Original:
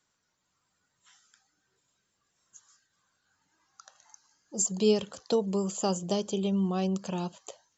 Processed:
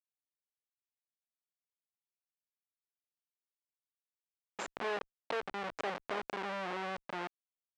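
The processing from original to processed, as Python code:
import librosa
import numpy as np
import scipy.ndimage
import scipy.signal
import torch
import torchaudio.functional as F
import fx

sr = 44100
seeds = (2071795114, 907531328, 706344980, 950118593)

y = fx.schmitt(x, sr, flips_db=-28.0)
y = fx.bandpass_edges(y, sr, low_hz=560.0, high_hz=2700.0)
y = fx.pre_swell(y, sr, db_per_s=100.0)
y = y * 10.0 ** (3.5 / 20.0)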